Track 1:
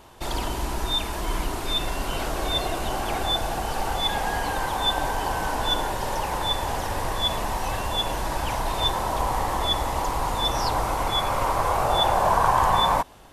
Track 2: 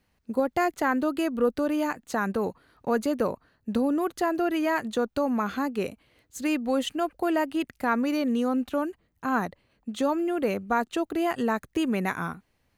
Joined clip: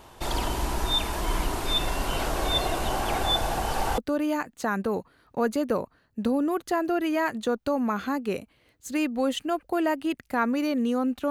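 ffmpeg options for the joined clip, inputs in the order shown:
ffmpeg -i cue0.wav -i cue1.wav -filter_complex "[0:a]apad=whole_dur=11.3,atrim=end=11.3,atrim=end=3.982[link_01];[1:a]atrim=start=1.478:end=8.8[link_02];[link_01][link_02]acrossfade=duration=0.004:curve1=hsin:curve2=hsin" out.wav

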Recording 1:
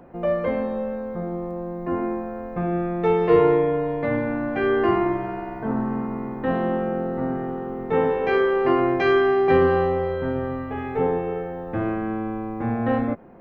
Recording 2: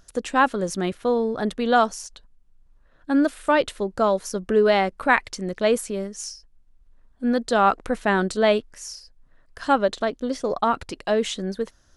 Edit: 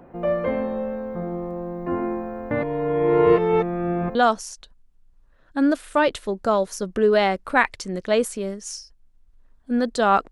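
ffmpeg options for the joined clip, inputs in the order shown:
ffmpeg -i cue0.wav -i cue1.wav -filter_complex "[0:a]apad=whole_dur=10.31,atrim=end=10.31,asplit=2[link_01][link_02];[link_01]atrim=end=2.512[link_03];[link_02]atrim=start=2.508:end=4.152,asetpts=PTS-STARTPTS,areverse[link_04];[1:a]atrim=start=1.678:end=7.84[link_05];[link_03][link_04]acrossfade=duration=0.004:curve1=hsin:curve2=hsin[link_06];[link_06][link_05]acrossfade=duration=0.004:curve1=hsin:curve2=hsin" out.wav

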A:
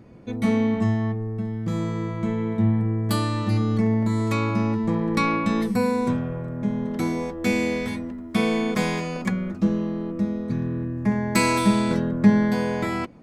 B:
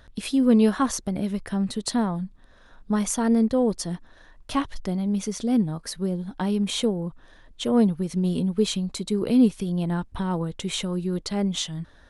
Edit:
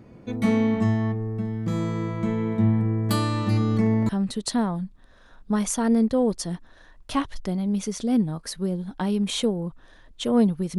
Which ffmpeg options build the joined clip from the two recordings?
ffmpeg -i cue0.wav -i cue1.wav -filter_complex "[0:a]apad=whole_dur=10.78,atrim=end=10.78,atrim=end=4.092[link_01];[1:a]atrim=start=1.488:end=8.18[link_02];[link_01][link_02]acrossfade=duration=0.004:curve1=hsin:curve2=hsin" out.wav

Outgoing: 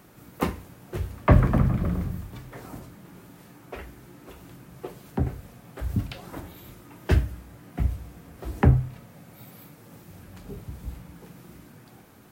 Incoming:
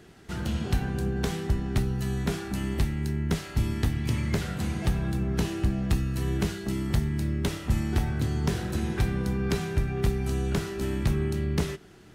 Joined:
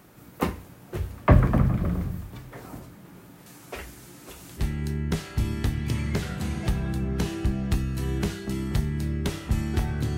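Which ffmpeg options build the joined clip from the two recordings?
ffmpeg -i cue0.wav -i cue1.wav -filter_complex "[0:a]asettb=1/sr,asplit=3[link_01][link_02][link_03];[link_01]atrim=end=3.464[link_04];[link_02]atrim=start=3.46:end=4.64,asetpts=PTS-STARTPTS,afade=type=in:duration=0.004:curve=qsin,afade=type=out:start_time=1.176:duration=0.004:curve=qsin,equalizer=frequency=7600:width=0.4:gain=12[link_05];[link_03]atrim=start=4.636[link_06];[link_04][link_05]acrossfade=duration=0.004:curve1=hsin:curve2=qsin[link_07];[link_07][link_06]acrossfade=duration=0.004:curve1=qsin:curve2=hsin,apad=whole_dur=10.17,atrim=end=10.17,atrim=end=4.64,asetpts=PTS-STARTPTS[link_08];[1:a]atrim=start=2.75:end=8.36,asetpts=PTS-STARTPTS[link_09];[link_08][link_09]acrossfade=duration=0.08:curve1=tri:curve2=tri" out.wav

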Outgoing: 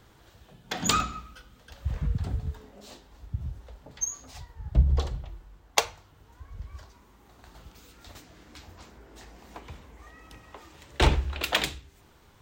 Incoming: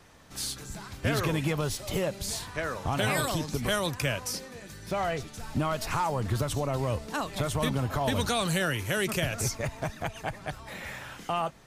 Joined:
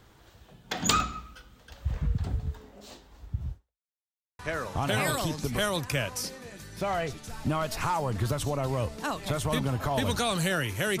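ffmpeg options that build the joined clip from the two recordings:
ffmpeg -i cue0.wav -i cue1.wav -filter_complex "[0:a]apad=whole_dur=11,atrim=end=11,asplit=2[link_01][link_02];[link_01]atrim=end=3.94,asetpts=PTS-STARTPTS,afade=type=out:start_time=3.52:duration=0.42:curve=exp[link_03];[link_02]atrim=start=3.94:end=4.39,asetpts=PTS-STARTPTS,volume=0[link_04];[1:a]atrim=start=2.49:end=9.1,asetpts=PTS-STARTPTS,afade=type=in:duration=0.004:curve=hsin[link_05];[link_03][link_04][link_05]concat=n=3:v=0:a=1" out.wav

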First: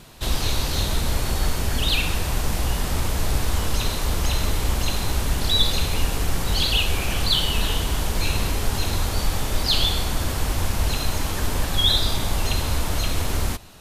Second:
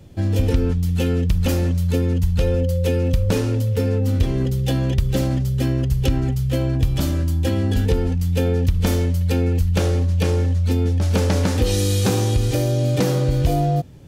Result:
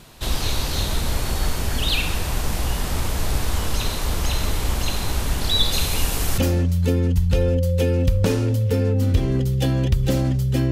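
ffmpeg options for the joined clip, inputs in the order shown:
ffmpeg -i cue0.wav -i cue1.wav -filter_complex "[0:a]asettb=1/sr,asplit=3[link_01][link_02][link_03];[link_01]atrim=end=5.724[link_04];[link_02]atrim=start=5.72:end=6.38,asetpts=PTS-STARTPTS,afade=type=in:duration=0.004:curve=qsin,afade=type=out:start_time=0.656:duration=0.004:curve=qsin,highshelf=frequency=5200:gain=7.5[link_05];[link_03]atrim=start=6.376[link_06];[link_04][link_05]acrossfade=duration=0.004:curve1=hsin:curve2=qsin[link_07];[link_07][link_06]acrossfade=duration=0.004:curve1=qsin:curve2=hsin,apad=whole_dur=10.71,atrim=end=10.71,atrim=end=6.382[link_08];[1:a]atrim=start=1.438:end=5.77[link_09];[link_08][link_09]acrossfade=duration=0.004:curve1=hsin:curve2=hsin" out.wav

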